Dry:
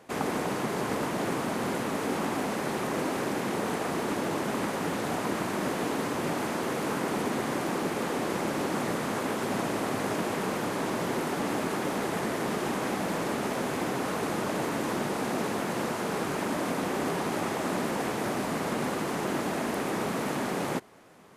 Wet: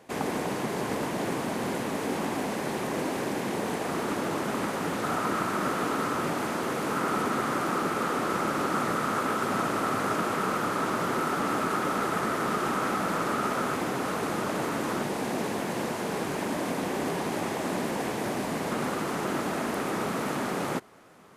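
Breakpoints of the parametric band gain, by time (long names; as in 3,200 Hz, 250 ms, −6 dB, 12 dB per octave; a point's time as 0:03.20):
parametric band 1,300 Hz 0.31 octaves
−3.5 dB
from 0:03.89 +4 dB
from 0:05.03 +12.5 dB
from 0:06.26 +6 dB
from 0:06.96 +13.5 dB
from 0:13.76 +5 dB
from 0:15.03 −3.5 dB
from 0:18.71 +4.5 dB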